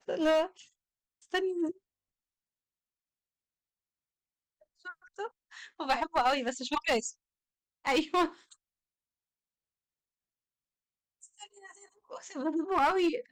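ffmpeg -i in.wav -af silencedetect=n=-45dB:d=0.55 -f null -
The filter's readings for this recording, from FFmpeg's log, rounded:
silence_start: 0.61
silence_end: 1.33 | silence_duration: 0.72
silence_start: 1.71
silence_end: 4.85 | silence_duration: 3.14
silence_start: 7.11
silence_end: 7.85 | silence_duration: 0.74
silence_start: 8.53
silence_end: 11.23 | silence_duration: 2.71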